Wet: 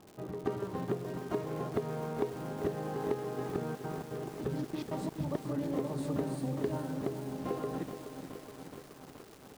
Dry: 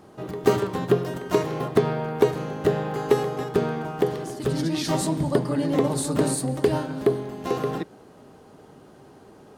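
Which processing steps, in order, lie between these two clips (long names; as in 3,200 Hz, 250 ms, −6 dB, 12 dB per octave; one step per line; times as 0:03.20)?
low-pass filter 1,200 Hz 6 dB per octave
downward compressor 4 to 1, threshold −24 dBFS, peak gain reduction 10 dB
0:03.56–0:05.58: gate pattern ".xx.xxx.x.xx.xx" 168 BPM
surface crackle 250 per second −37 dBFS
feedback echo at a low word length 423 ms, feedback 80%, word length 7 bits, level −9 dB
level −7 dB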